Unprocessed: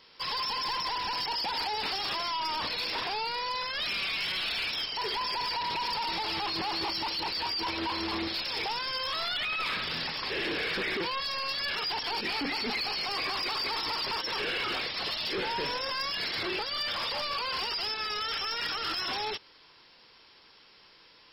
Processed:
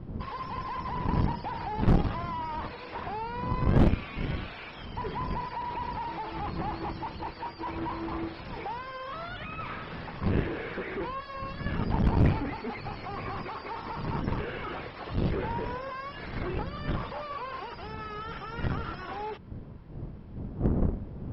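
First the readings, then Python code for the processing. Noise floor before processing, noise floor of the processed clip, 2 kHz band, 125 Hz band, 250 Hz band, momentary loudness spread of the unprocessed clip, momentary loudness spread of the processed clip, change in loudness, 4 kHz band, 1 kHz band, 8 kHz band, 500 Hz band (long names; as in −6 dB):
−57 dBFS, −44 dBFS, −7.5 dB, +19.5 dB, +9.0 dB, 2 LU, 12 LU, −2.5 dB, −18.5 dB, −1.0 dB, below −15 dB, +2.5 dB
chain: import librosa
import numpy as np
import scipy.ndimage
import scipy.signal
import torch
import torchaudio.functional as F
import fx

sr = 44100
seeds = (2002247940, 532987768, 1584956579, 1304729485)

y = fx.dmg_wind(x, sr, seeds[0], corner_hz=170.0, level_db=-32.0)
y = scipy.signal.sosfilt(scipy.signal.butter(2, 1300.0, 'lowpass', fs=sr, output='sos'), y)
y = fx.cheby_harmonics(y, sr, harmonics=(2,), levels_db=(-8,), full_scale_db=-16.5)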